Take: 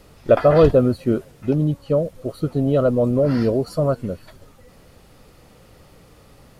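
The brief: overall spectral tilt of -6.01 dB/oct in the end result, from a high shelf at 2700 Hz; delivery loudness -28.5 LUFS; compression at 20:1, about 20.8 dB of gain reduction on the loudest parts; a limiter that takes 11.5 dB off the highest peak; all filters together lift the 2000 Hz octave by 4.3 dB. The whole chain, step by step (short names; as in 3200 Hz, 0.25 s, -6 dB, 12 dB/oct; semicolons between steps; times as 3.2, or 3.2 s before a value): bell 2000 Hz +4 dB; high shelf 2700 Hz +4.5 dB; compressor 20:1, threshold -29 dBFS; gain +12.5 dB; limiter -18 dBFS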